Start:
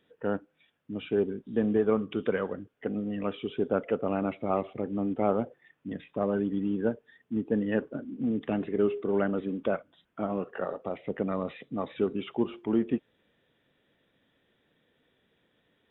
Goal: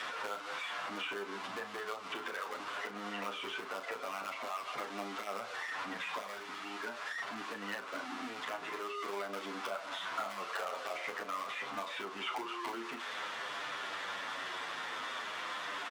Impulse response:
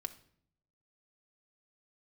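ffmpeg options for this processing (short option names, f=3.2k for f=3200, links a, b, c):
-filter_complex "[0:a]aeval=exprs='val(0)+0.5*0.015*sgn(val(0))':c=same,lowpass=3.1k,equalizer=f=1.1k:w=1.3:g=14.5,alimiter=limit=-18dB:level=0:latency=1:release=205,acrossover=split=940|2200[a][b][c];[a]acompressor=threshold=-33dB:ratio=4[d];[b]acompressor=threshold=-46dB:ratio=4[e];[c]acompressor=threshold=-55dB:ratio=4[f];[d][e][f]amix=inputs=3:normalize=0,volume=28dB,asoftclip=hard,volume=-28dB,aderivative,asplit=2[g][h];[h]adelay=35,volume=-8dB[i];[g][i]amix=inputs=2:normalize=0,asplit=2[j][k];[1:a]atrim=start_sample=2205,asetrate=79380,aresample=44100[l];[k][l]afir=irnorm=-1:irlink=0,volume=0.5dB[m];[j][m]amix=inputs=2:normalize=0,asplit=2[n][o];[o]adelay=9,afreqshift=-0.47[p];[n][p]amix=inputs=2:normalize=1,volume=15.5dB"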